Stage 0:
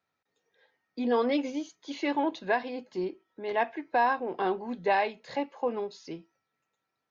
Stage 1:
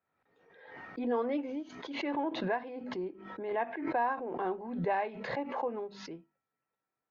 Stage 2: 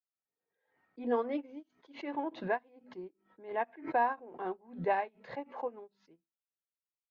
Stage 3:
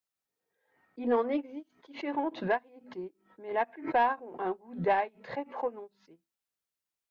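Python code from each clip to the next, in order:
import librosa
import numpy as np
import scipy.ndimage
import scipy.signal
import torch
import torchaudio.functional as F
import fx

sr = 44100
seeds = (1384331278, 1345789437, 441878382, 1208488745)

y1 = scipy.signal.sosfilt(scipy.signal.butter(2, 1900.0, 'lowpass', fs=sr, output='sos'), x)
y1 = fx.hum_notches(y1, sr, base_hz=50, count=5)
y1 = fx.pre_swell(y1, sr, db_per_s=53.0)
y1 = y1 * 10.0 ** (-5.5 / 20.0)
y2 = fx.upward_expand(y1, sr, threshold_db=-48.0, expansion=2.5)
y2 = y2 * 10.0 ** (3.0 / 20.0)
y3 = 10.0 ** (-21.5 / 20.0) * np.tanh(y2 / 10.0 ** (-21.5 / 20.0))
y3 = y3 * 10.0 ** (5.0 / 20.0)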